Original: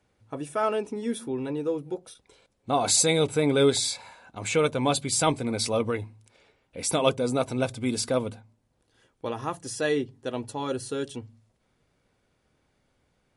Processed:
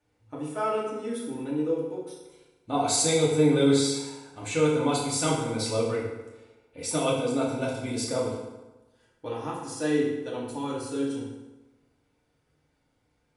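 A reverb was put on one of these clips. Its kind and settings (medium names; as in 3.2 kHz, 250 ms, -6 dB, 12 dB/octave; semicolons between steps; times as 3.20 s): FDN reverb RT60 1.1 s, low-frequency decay 1×, high-frequency decay 0.75×, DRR -5.5 dB; trim -8.5 dB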